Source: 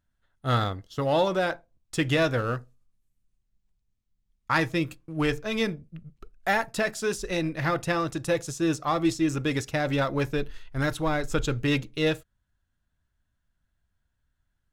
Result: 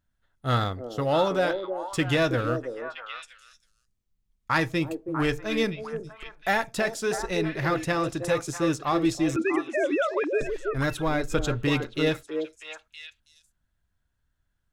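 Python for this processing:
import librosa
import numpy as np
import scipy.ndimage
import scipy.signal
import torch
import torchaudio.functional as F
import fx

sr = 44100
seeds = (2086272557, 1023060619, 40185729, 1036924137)

y = fx.sine_speech(x, sr, at=(9.36, 10.41))
y = fx.echo_stepped(y, sr, ms=323, hz=410.0, octaves=1.4, feedback_pct=70, wet_db=-3.5)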